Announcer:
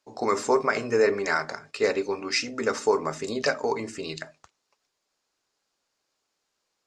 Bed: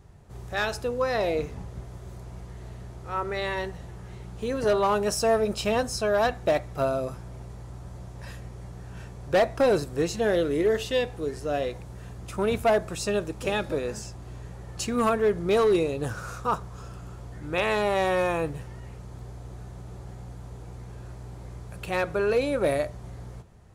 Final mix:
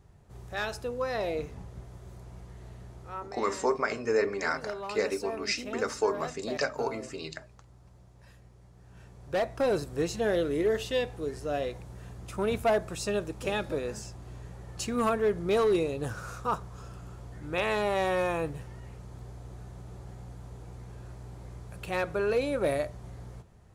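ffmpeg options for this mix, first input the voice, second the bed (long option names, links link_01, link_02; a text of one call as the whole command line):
ffmpeg -i stem1.wav -i stem2.wav -filter_complex "[0:a]adelay=3150,volume=-5dB[link_01];[1:a]volume=6dB,afade=type=out:start_time=3.02:duration=0.3:silence=0.334965,afade=type=in:start_time=8.73:duration=1.28:silence=0.266073[link_02];[link_01][link_02]amix=inputs=2:normalize=0" out.wav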